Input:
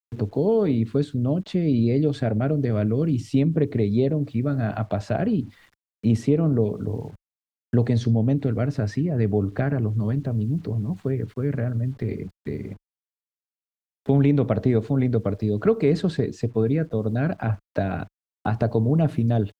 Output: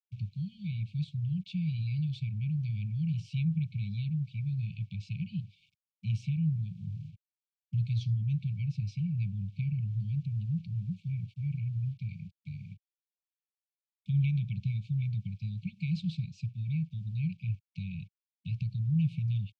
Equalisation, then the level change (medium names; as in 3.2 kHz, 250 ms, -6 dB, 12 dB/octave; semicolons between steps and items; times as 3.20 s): band-pass 120–3600 Hz; brick-wall FIR band-stop 190–2200 Hz; -4.0 dB